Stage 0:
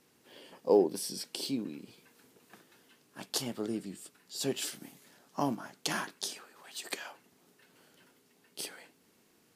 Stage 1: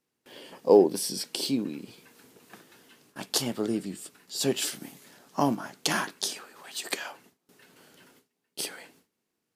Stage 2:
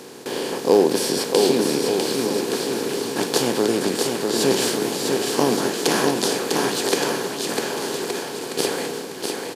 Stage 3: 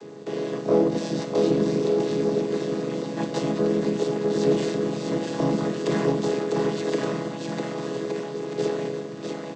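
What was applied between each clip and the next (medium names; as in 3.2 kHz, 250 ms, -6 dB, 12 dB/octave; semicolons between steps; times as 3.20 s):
gate with hold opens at -53 dBFS; trim +6.5 dB
spectral levelling over time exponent 0.4; bouncing-ball echo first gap 650 ms, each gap 0.8×, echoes 5
vocoder on a held chord minor triad, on C#3; in parallel at -6 dB: saturation -21 dBFS, distortion -9 dB; on the sum: trim -4.5 dB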